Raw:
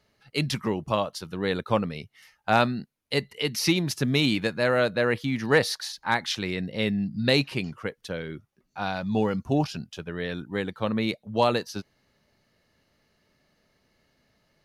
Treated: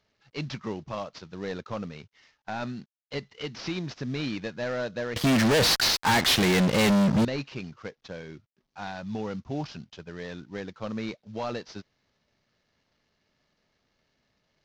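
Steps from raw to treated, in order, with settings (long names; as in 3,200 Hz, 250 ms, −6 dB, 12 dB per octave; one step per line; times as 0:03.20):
variable-slope delta modulation 32 kbit/s
brickwall limiter −16 dBFS, peak gain reduction 6.5 dB
0:05.16–0:07.25: fuzz pedal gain 39 dB, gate −46 dBFS
level −6 dB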